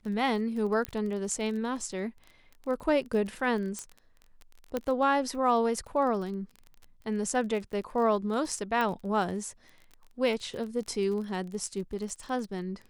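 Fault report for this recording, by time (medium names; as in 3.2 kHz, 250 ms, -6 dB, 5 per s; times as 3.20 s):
crackle 25 per s -37 dBFS
0.85 s: pop -17 dBFS
3.79 s: pop -21 dBFS
4.77 s: pop -17 dBFS
8.81 s: pop -18 dBFS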